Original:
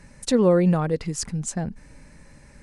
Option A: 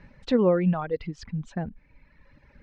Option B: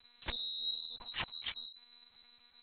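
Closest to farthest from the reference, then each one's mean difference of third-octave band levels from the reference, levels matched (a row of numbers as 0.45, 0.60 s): A, B; 5.0, 14.0 dB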